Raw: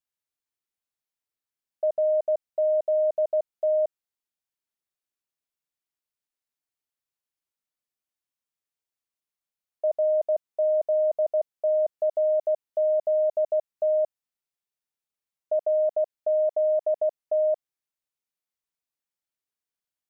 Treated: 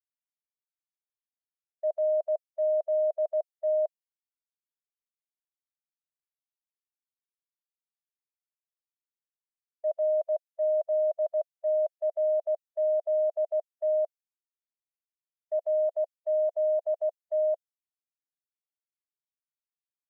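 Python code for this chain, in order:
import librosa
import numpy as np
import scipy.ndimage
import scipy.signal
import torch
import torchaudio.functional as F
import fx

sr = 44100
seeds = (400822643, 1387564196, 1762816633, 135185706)

y = fx.bin_expand(x, sr, power=1.5)
y = scipy.signal.sosfilt(scipy.signal.butter(4, 610.0, 'highpass', fs=sr, output='sos'), y)
y = fx.band_widen(y, sr, depth_pct=100)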